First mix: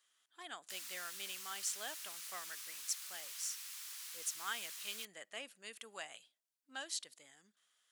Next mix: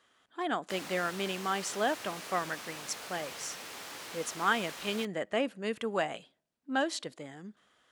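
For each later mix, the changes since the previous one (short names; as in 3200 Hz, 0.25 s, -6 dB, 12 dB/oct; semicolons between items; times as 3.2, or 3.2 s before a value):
background: remove steep high-pass 960 Hz 36 dB/oct; master: remove pre-emphasis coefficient 0.97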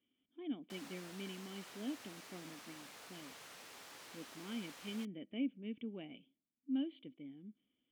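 speech: add vocal tract filter i; background -10.5 dB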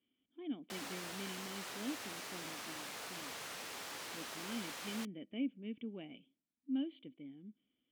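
background +8.5 dB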